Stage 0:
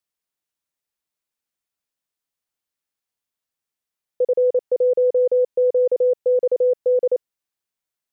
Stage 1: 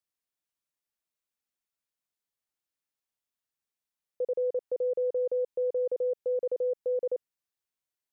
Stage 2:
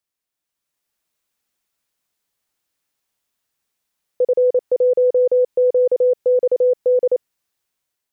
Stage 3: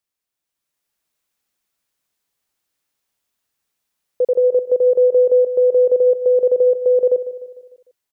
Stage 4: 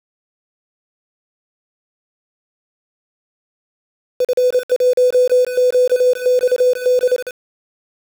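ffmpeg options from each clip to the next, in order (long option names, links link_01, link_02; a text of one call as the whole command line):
ffmpeg -i in.wav -af "alimiter=limit=-19dB:level=0:latency=1:release=57,volume=-5.5dB" out.wav
ffmpeg -i in.wav -af "dynaudnorm=framelen=280:gausssize=5:maxgain=8dB,volume=5.5dB" out.wav
ffmpeg -i in.wav -af "aecho=1:1:150|300|450|600|750:0.211|0.108|0.055|0.028|0.0143" out.wav
ffmpeg -i in.wav -af "aeval=exprs='val(0)*gte(abs(val(0)),0.0668)':channel_layout=same" out.wav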